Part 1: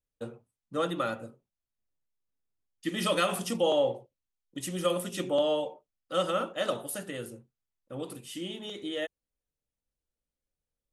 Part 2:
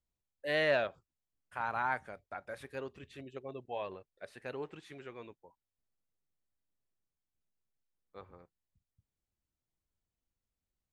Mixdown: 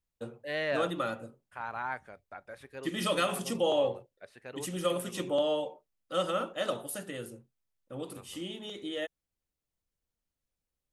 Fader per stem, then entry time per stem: -2.0, -2.5 dB; 0.00, 0.00 s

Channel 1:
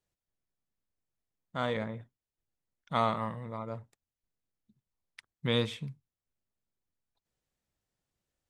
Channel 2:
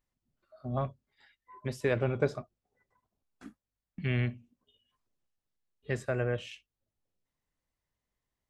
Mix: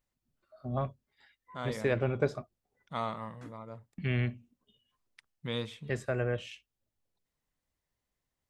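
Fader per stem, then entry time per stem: -6.5, -0.5 dB; 0.00, 0.00 s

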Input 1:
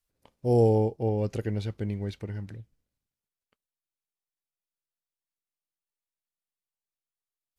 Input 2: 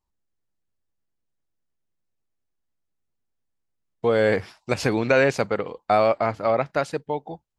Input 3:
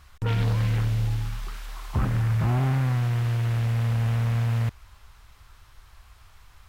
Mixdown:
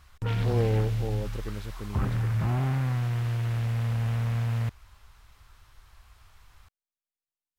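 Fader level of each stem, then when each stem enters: -7.0 dB, off, -3.5 dB; 0.00 s, off, 0.00 s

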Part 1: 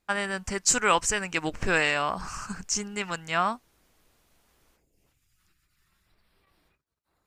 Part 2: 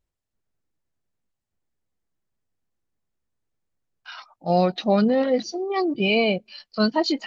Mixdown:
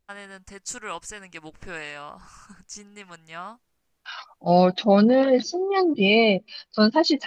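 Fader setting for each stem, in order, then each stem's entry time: -11.5, +2.5 dB; 0.00, 0.00 s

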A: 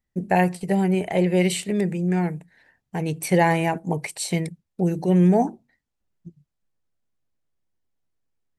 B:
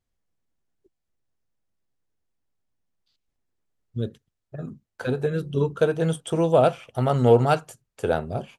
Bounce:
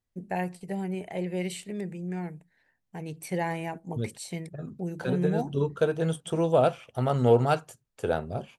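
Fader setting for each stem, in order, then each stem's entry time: -11.5, -4.0 dB; 0.00, 0.00 s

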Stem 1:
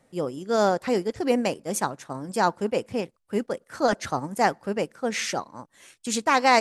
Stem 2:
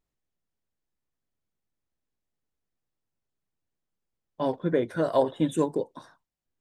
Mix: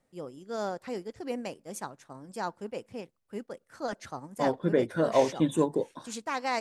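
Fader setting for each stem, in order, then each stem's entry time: -12.0, -0.5 dB; 0.00, 0.00 s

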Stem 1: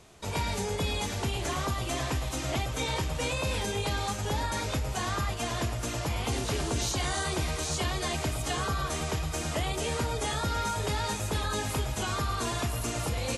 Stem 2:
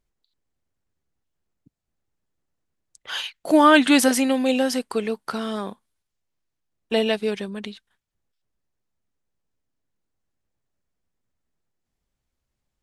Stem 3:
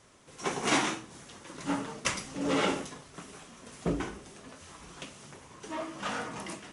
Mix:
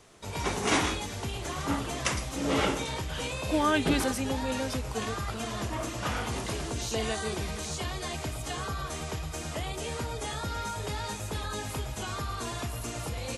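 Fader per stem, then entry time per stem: -4.0, -12.0, +0.5 dB; 0.00, 0.00, 0.00 s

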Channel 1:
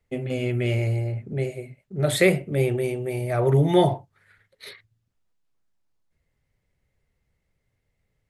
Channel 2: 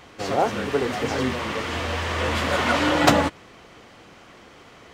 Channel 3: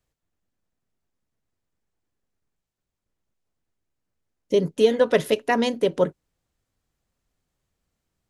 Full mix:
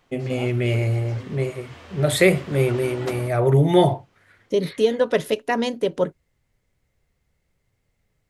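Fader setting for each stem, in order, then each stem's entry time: +2.5, -17.0, -1.0 dB; 0.00, 0.00, 0.00 s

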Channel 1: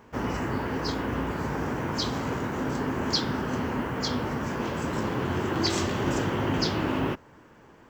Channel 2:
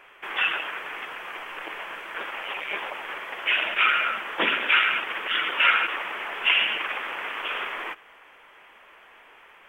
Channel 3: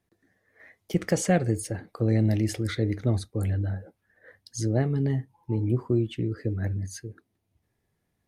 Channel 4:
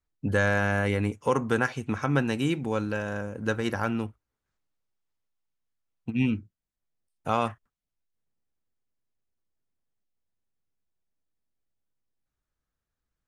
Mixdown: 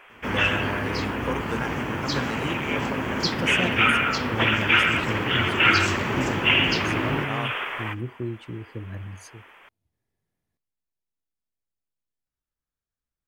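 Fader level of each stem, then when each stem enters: 0.0, +1.0, -7.0, -6.5 dB; 0.10, 0.00, 2.30, 0.00 s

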